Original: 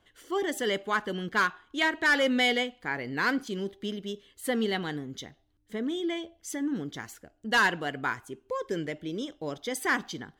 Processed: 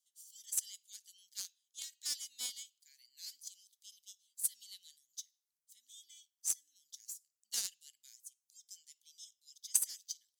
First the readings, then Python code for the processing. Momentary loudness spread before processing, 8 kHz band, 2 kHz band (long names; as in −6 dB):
14 LU, +5.5 dB, −35.0 dB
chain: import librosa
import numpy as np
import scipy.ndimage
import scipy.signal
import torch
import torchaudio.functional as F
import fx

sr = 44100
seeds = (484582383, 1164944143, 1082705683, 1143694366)

y = scipy.signal.sosfilt(scipy.signal.cheby2(4, 70, 1300.0, 'highpass', fs=sr, output='sos'), x)
y = fx.cheby_harmonics(y, sr, harmonics=(7,), levels_db=(-21,), full_scale_db=-21.5)
y = F.gain(torch.from_numpy(y), 10.0).numpy()